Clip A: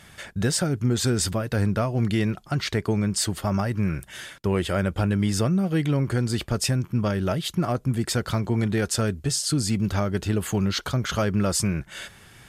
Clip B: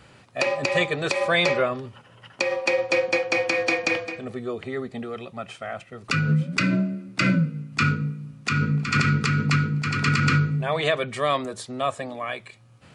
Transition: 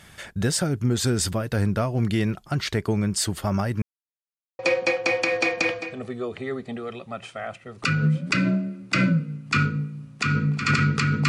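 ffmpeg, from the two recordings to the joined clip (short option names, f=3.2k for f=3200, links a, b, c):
-filter_complex "[0:a]apad=whole_dur=11.28,atrim=end=11.28,asplit=2[a][b];[a]atrim=end=3.82,asetpts=PTS-STARTPTS,afade=t=out:st=3.816:d=0.004:c=hsin[c];[b]atrim=start=3.82:end=4.59,asetpts=PTS-STARTPTS,volume=0[d];[1:a]atrim=start=2.85:end=9.54,asetpts=PTS-STARTPTS,afade=t=in:d=0.004:c=hsin[e];[c][d][e]concat=n=3:v=0:a=1"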